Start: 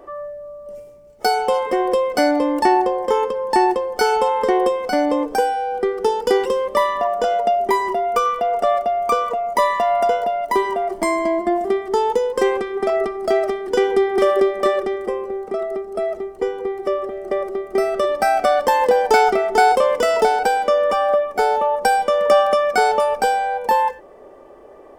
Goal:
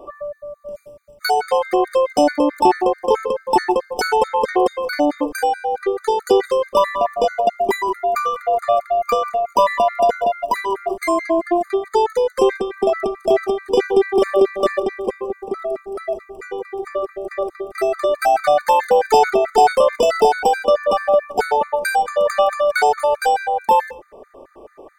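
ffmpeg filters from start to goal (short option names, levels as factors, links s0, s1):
-af "acontrast=25,afftfilt=real='re*gt(sin(2*PI*4.6*pts/sr)*(1-2*mod(floor(b*sr/1024/1200),2)),0)':imag='im*gt(sin(2*PI*4.6*pts/sr)*(1-2*mod(floor(b*sr/1024/1200),2)),0)':win_size=1024:overlap=0.75,volume=0.891"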